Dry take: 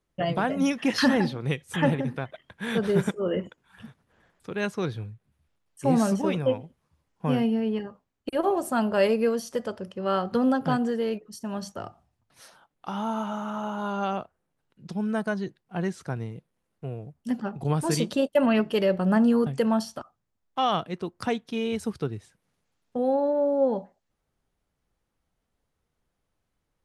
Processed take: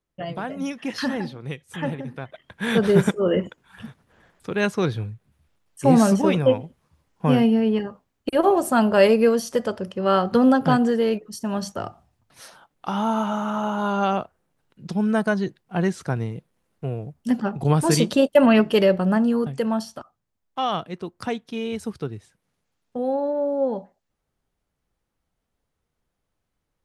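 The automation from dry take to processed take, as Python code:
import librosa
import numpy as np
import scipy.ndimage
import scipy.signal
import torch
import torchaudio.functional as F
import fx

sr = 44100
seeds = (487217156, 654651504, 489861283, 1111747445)

y = fx.gain(x, sr, db=fx.line((2.07, -4.5), (2.64, 6.5), (18.82, 6.5), (19.24, 0.0)))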